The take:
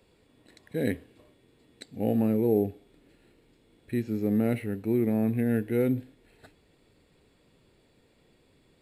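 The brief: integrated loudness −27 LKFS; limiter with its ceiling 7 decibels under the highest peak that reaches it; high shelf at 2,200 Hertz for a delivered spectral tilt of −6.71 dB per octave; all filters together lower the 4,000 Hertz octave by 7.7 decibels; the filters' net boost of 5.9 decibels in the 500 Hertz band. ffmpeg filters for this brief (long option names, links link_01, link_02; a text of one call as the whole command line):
ffmpeg -i in.wav -af "equalizer=frequency=500:width_type=o:gain=7.5,highshelf=frequency=2200:gain=-6,equalizer=frequency=4000:width_type=o:gain=-4,alimiter=limit=-15.5dB:level=0:latency=1" out.wav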